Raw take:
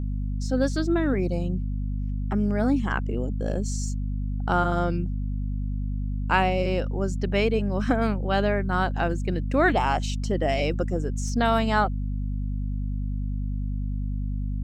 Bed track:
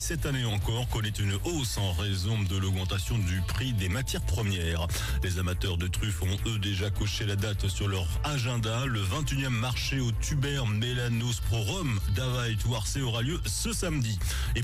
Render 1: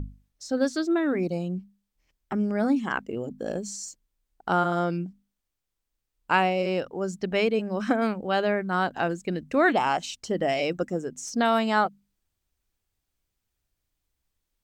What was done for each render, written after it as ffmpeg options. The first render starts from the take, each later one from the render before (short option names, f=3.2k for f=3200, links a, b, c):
-af "bandreject=f=50:t=h:w=6,bandreject=f=100:t=h:w=6,bandreject=f=150:t=h:w=6,bandreject=f=200:t=h:w=6,bandreject=f=250:t=h:w=6"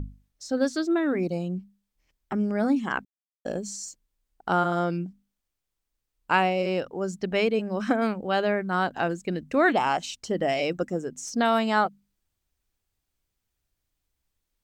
-filter_complex "[0:a]asplit=3[a][b][c];[a]atrim=end=3.05,asetpts=PTS-STARTPTS,afade=t=out:st=3.046:d=0.004:c=hsin[d];[b]atrim=start=3.05:end=3.45,asetpts=PTS-STARTPTS,volume=0[e];[c]atrim=start=3.45,asetpts=PTS-STARTPTS,afade=t=in:d=0.004:c=hsin[f];[d][e][f]concat=n=3:v=0:a=1"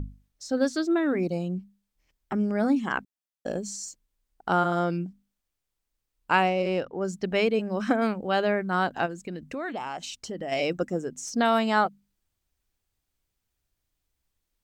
-filter_complex "[0:a]asettb=1/sr,asplit=3[a][b][c];[a]atrim=end=6.474[d];[b]atrim=start=6.47:end=7.05,asetpts=PTS-STARTPTS,afade=t=in:d=0.004:c=qsin,afade=t=out:st=0.576:d=0.004:c=qsin,adynamicsmooth=sensitivity=3:basefreq=4.6k[e];[c]atrim=start=7.046[f];[d][e]acrossfade=d=0.004:c1=hsin:c2=qsin[g];[g][f]acrossfade=d=0.004:c1=qsin:c2=hsin,asplit=3[h][i][j];[h]afade=t=out:st=9.05:d=0.02[k];[i]acompressor=threshold=-33dB:ratio=3:attack=3.2:release=140:knee=1:detection=peak,afade=t=in:st=9.05:d=0.02,afade=t=out:st=10.51:d=0.02[l];[j]afade=t=in:st=10.51:d=0.02[m];[k][l][m]amix=inputs=3:normalize=0"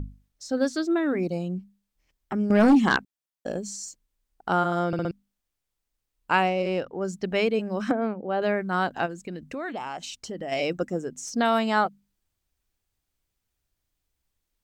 -filter_complex "[0:a]asettb=1/sr,asplit=3[a][b][c];[a]atrim=end=2.504[d];[b]atrim=start=2.5:end=2.97,asetpts=PTS-STARTPTS,afade=t=in:d=0.004:c=qsin,afade=t=out:st=0.466:d=0.004:c=qsin,aeval=exprs='0.237*sin(PI/2*2*val(0)/0.237)':c=same[e];[c]atrim=start=2.966[f];[d][e]acrossfade=d=0.004:c1=hsin:c2=qsin[g];[g][f]acrossfade=d=0.004:c1=qsin:c2=hsin,asettb=1/sr,asplit=3[h][i][j];[h]atrim=end=7.914[k];[i]atrim=start=7.91:end=8.42,asetpts=PTS-STARTPTS,afade=t=in:d=0.004:c=qsin,afade=t=out:st=0.506:d=0.004:c=qsin,bandpass=f=410:t=q:w=0.59[l];[j]atrim=start=8.416[m];[k][l]acrossfade=d=0.004:c1=hsin:c2=qsin[n];[n][m]acrossfade=d=0.004:c1=qsin:c2=hsin,asplit=5[o][p][q][r][s];[o]atrim=end=4.932[t];[p]atrim=start=4.868:end=4.932[u];[q]atrim=start=4.868:end=4.932[v];[r]atrim=start=4.868:end=4.932[w];[s]atrim=start=5.108[x];[t][u]acrossfade=d=0.004:c1=hsin:c2=hsin[y];[y][v]acrossfade=d=0.004:c1=hsin:c2=hsin[z];[z][w]acrossfade=d=0.004:c1=hsin:c2=hsin[aa];[aa][x]acrossfade=d=0.004:c1=hsin:c2=hsin"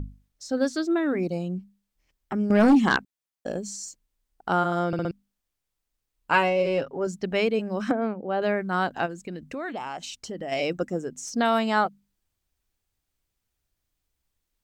-filter_complex "[0:a]asettb=1/sr,asplit=3[a][b][c];[a]atrim=end=6.324[d];[b]atrim=start=6.32:end=7.07,asetpts=PTS-STARTPTS,afade=t=in:d=0.004:c=qsin,afade=t=out:st=0.746:d=0.004:c=qsin,aecho=1:1:7.3:0.7,atrim=end_sample=33075[e];[c]atrim=start=7.066[f];[d][e]acrossfade=d=0.004:c1=hsin:c2=qsin[g];[g][f]acrossfade=d=0.004:c1=qsin:c2=hsin"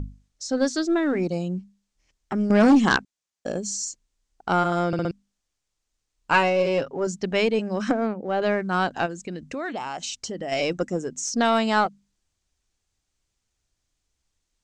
-filter_complex "[0:a]asplit=2[a][b];[b]aeval=exprs='clip(val(0),-1,0.0376)':c=same,volume=-10.5dB[c];[a][c]amix=inputs=2:normalize=0,lowpass=f=6.9k:t=q:w=1.9"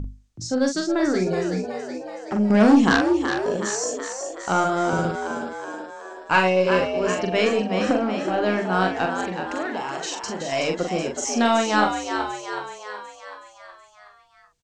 -filter_complex "[0:a]asplit=2[a][b];[b]adelay=43,volume=-5dB[c];[a][c]amix=inputs=2:normalize=0,asplit=8[d][e][f][g][h][i][j][k];[e]adelay=373,afreqshift=69,volume=-7dB[l];[f]adelay=746,afreqshift=138,volume=-11.7dB[m];[g]adelay=1119,afreqshift=207,volume=-16.5dB[n];[h]adelay=1492,afreqshift=276,volume=-21.2dB[o];[i]adelay=1865,afreqshift=345,volume=-25.9dB[p];[j]adelay=2238,afreqshift=414,volume=-30.7dB[q];[k]adelay=2611,afreqshift=483,volume=-35.4dB[r];[d][l][m][n][o][p][q][r]amix=inputs=8:normalize=0"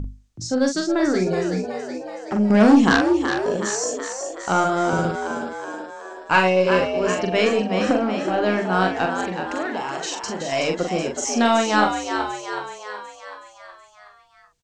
-af "volume=1.5dB"